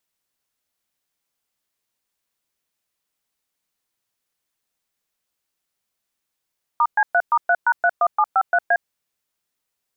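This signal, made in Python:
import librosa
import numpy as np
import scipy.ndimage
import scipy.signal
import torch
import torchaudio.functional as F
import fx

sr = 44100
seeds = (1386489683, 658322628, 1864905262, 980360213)

y = fx.dtmf(sr, digits='*C3*3#31753A', tone_ms=57, gap_ms=116, level_db=-16.0)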